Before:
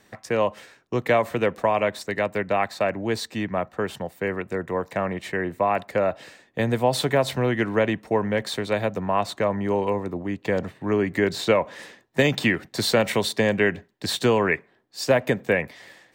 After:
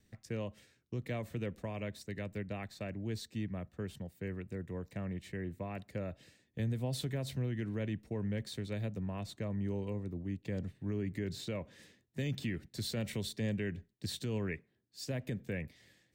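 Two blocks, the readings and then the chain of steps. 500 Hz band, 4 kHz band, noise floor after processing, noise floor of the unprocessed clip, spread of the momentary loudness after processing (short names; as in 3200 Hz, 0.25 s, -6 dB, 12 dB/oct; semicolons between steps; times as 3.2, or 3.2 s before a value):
-20.0 dB, -15.5 dB, -75 dBFS, -61 dBFS, 7 LU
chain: passive tone stack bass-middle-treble 10-0-1; wow and flutter 26 cents; limiter -35 dBFS, peak gain reduction 7.5 dB; gain +7 dB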